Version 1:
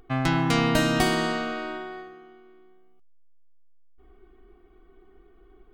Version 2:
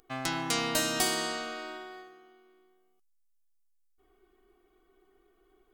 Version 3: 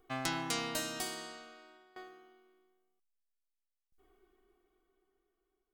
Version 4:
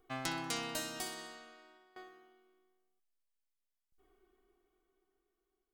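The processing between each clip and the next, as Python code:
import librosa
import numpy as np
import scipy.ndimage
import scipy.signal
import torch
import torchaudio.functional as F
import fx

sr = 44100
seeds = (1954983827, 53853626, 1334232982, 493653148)

y1 = fx.bass_treble(x, sr, bass_db=-11, treble_db=13)
y1 = y1 * 10.0 ** (-7.0 / 20.0)
y2 = fx.tremolo_decay(y1, sr, direction='decaying', hz=0.51, depth_db=21)
y3 = fx.echo_feedback(y2, sr, ms=63, feedback_pct=56, wet_db=-16.5)
y3 = y3 * 10.0 ** (-2.5 / 20.0)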